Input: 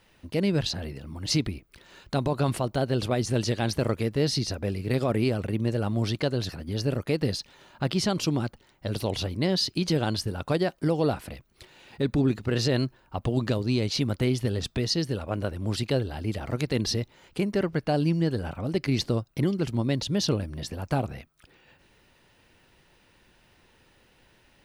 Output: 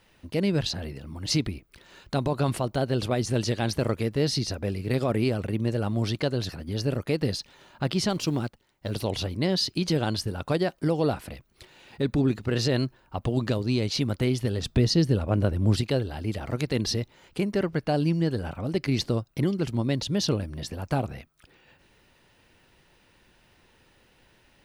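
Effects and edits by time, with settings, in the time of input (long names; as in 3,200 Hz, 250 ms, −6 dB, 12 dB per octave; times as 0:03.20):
0:08.09–0:08.92: mu-law and A-law mismatch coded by A
0:14.66–0:15.81: low-shelf EQ 430 Hz +8.5 dB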